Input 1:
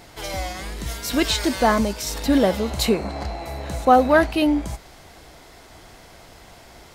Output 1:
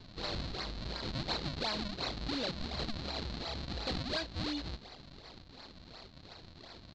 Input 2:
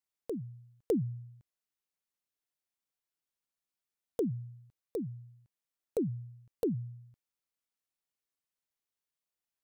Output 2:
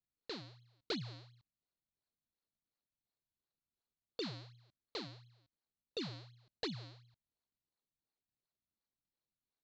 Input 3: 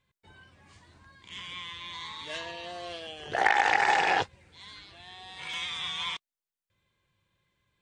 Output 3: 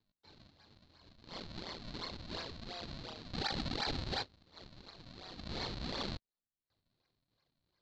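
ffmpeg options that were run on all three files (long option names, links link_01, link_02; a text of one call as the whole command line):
ffmpeg -i in.wav -af "tiltshelf=frequency=690:gain=-3,acompressor=threshold=-24dB:ratio=4,aresample=16000,acrusher=samples=22:mix=1:aa=0.000001:lfo=1:lforange=35.2:lforate=2.8,aresample=44100,asoftclip=type=tanh:threshold=-25dB,lowpass=frequency=4200:width_type=q:width=8.3,volume=-8dB" out.wav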